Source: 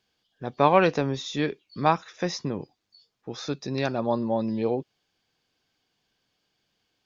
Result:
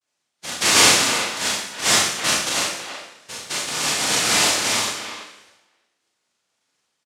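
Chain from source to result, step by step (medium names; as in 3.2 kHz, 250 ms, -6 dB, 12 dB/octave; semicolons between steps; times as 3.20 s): vocoder on a broken chord major triad, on C#3, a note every 495 ms; on a send: feedback delay 215 ms, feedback 41%, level -19 dB; on the sum: noise-vocoded speech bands 1; speakerphone echo 330 ms, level -8 dB; Schroeder reverb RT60 0.73 s, combs from 26 ms, DRR -4 dB; trim +1 dB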